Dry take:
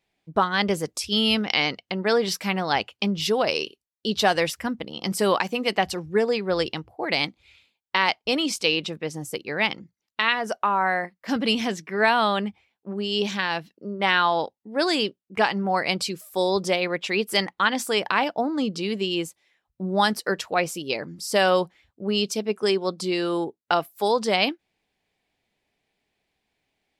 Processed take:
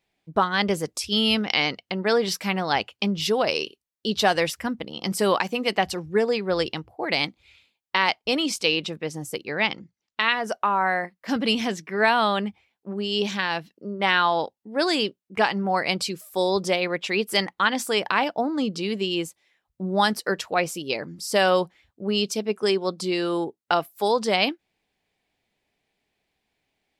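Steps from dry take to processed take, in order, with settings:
0:09.48–0:10.20: low-pass filter 7,600 Hz 24 dB per octave

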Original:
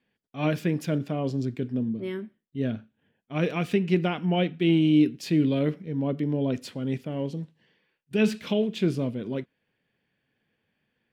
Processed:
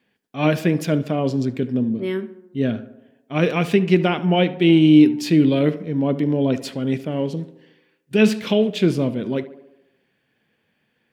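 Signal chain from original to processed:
low-shelf EQ 77 Hz −11 dB
tape delay 72 ms, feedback 66%, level −14 dB, low-pass 1,800 Hz
level +8 dB

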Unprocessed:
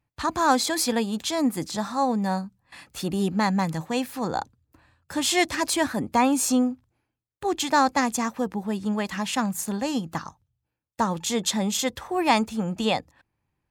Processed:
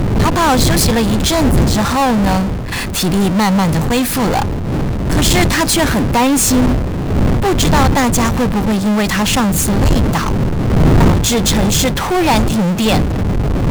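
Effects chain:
wind on the microphone 170 Hz −23 dBFS
power curve on the samples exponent 0.35
level −3.5 dB

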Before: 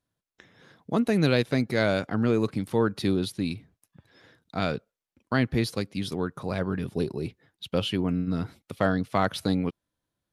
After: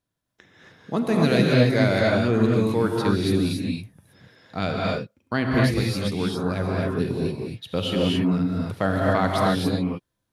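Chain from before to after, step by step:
reverb whose tail is shaped and stops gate 300 ms rising, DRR −3 dB

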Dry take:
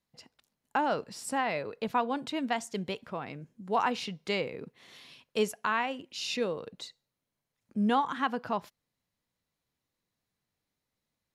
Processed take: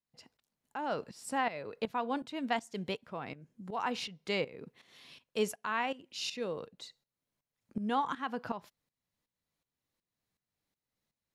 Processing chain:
shaped tremolo saw up 2.7 Hz, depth 80%

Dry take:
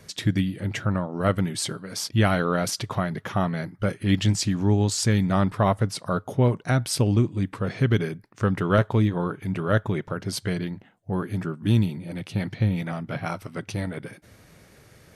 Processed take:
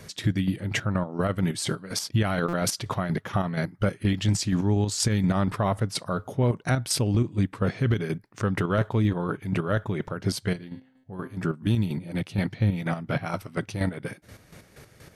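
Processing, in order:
0:10.53–0:11.37: tuned comb filter 130 Hz, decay 0.81 s, harmonics all, mix 70%
square-wave tremolo 4.2 Hz, depth 60%, duty 35%
brickwall limiter −19.5 dBFS, peak gain reduction 10.5 dB
buffer that repeats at 0:02.48, samples 256, times 8
level +5 dB

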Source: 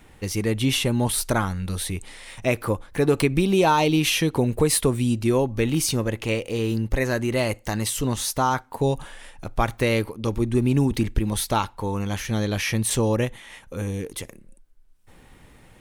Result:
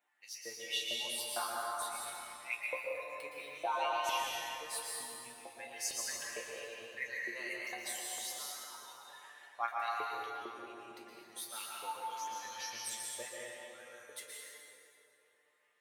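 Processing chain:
spectral dynamics exaggerated over time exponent 1.5
reversed playback
downward compressor 6 to 1, threshold −34 dBFS, peak gain reduction 18 dB
reversed playback
resonators tuned to a chord A#2 major, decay 0.25 s
auto-filter high-pass saw up 2.2 Hz 560–7,500 Hz
dense smooth reverb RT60 3.3 s, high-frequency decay 0.55×, pre-delay 105 ms, DRR −4 dB
level +8 dB

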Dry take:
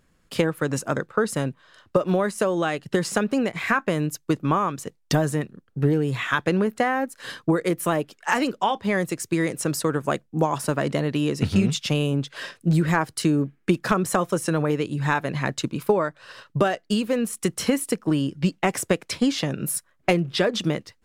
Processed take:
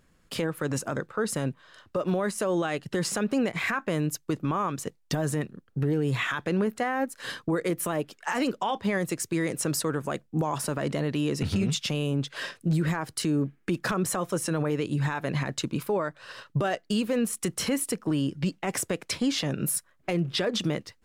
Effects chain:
brickwall limiter −18 dBFS, peak gain reduction 11 dB

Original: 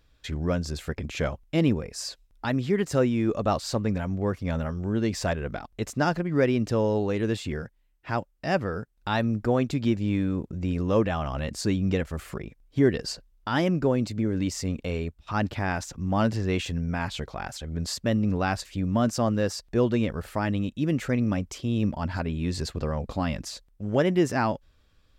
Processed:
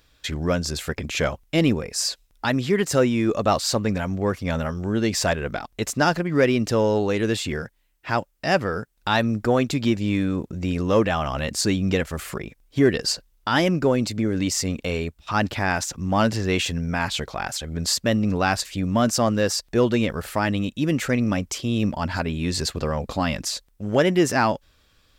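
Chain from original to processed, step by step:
spectral tilt +1.5 dB per octave
in parallel at −6 dB: soft clipping −19 dBFS, distortion −17 dB
on the sum: level +3 dB

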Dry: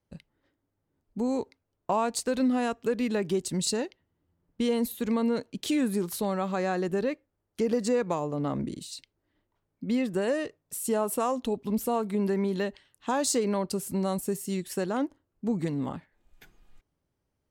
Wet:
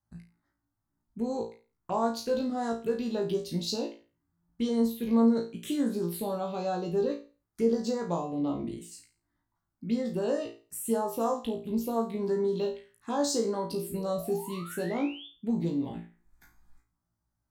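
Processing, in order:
phaser swept by the level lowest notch 460 Hz, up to 2,600 Hz, full sweep at −22.5 dBFS
sound drawn into the spectrogram rise, 0:13.70–0:15.27, 280–3,600 Hz −45 dBFS
flutter between parallel walls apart 3 metres, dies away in 0.34 s
level −3.5 dB

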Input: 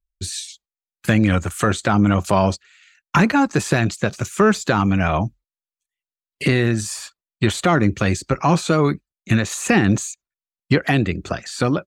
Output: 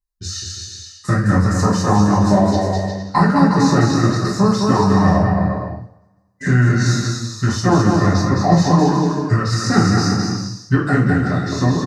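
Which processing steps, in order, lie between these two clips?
Butterworth band-reject 3,300 Hz, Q 1.8
bouncing-ball delay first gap 210 ms, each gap 0.7×, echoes 5
formants moved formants −5 semitones
coupled-rooms reverb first 0.47 s, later 1.6 s, from −24 dB, DRR −4.5 dB
level −3.5 dB

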